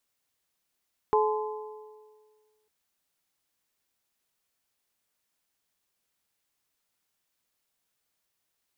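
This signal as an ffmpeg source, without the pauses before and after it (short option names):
-f lavfi -i "aevalsrc='0.0891*pow(10,-3*t/1.75)*sin(2*PI*429*t)+0.0708*pow(10,-3*t/1.421)*sin(2*PI*858*t)+0.0562*pow(10,-3*t/1.346)*sin(2*PI*1029.6*t)':d=1.55:s=44100"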